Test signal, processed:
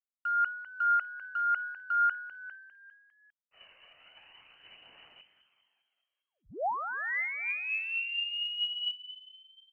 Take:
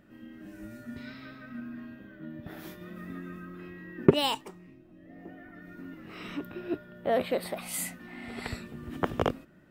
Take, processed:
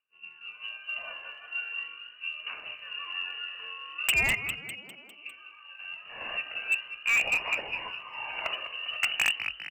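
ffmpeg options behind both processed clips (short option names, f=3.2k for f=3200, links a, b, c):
-filter_complex "[0:a]lowpass=f=2.6k:t=q:w=0.5098,lowpass=f=2.6k:t=q:w=0.6013,lowpass=f=2.6k:t=q:w=0.9,lowpass=f=2.6k:t=q:w=2.563,afreqshift=-3000,aeval=exprs='0.211*(abs(mod(val(0)/0.211+3,4)-2)-1)':c=same,aeval=exprs='0.211*(cos(1*acos(clip(val(0)/0.211,-1,1)))-cos(1*PI/2))+0.00841*(cos(4*acos(clip(val(0)/0.211,-1,1)))-cos(4*PI/2))+0.00133*(cos(5*acos(clip(val(0)/0.211,-1,1)))-cos(5*PI/2))+0.00376*(cos(6*acos(clip(val(0)/0.211,-1,1)))-cos(6*PI/2))+0.00188*(cos(7*acos(clip(val(0)/0.211,-1,1)))-cos(7*PI/2))':c=same,agate=range=-33dB:threshold=-41dB:ratio=3:detection=peak,acontrast=27,asplit=7[a][b][c][d][e][f][g];[b]adelay=201,afreqshift=47,volume=-12dB[h];[c]adelay=402,afreqshift=94,volume=-17.2dB[i];[d]adelay=603,afreqshift=141,volume=-22.4dB[j];[e]adelay=804,afreqshift=188,volume=-27.6dB[k];[f]adelay=1005,afreqshift=235,volume=-32.8dB[l];[g]adelay=1206,afreqshift=282,volume=-38dB[m];[a][h][i][j][k][l][m]amix=inputs=7:normalize=0,aphaser=in_gain=1:out_gain=1:delay=1.9:decay=0.38:speed=0.4:type=triangular,asoftclip=type=hard:threshold=-19dB,equalizer=f=670:t=o:w=0.65:g=4,volume=-1dB"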